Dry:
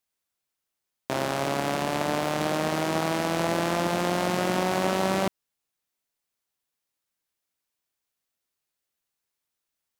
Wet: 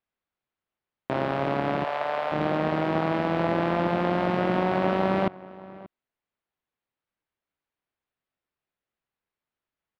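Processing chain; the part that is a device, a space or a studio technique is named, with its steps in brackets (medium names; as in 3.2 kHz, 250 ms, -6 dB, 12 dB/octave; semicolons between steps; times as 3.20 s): 1.84–2.32 s: steep high-pass 510 Hz; shout across a valley (distance through air 400 m; echo from a far wall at 100 m, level -19 dB); trim +2.5 dB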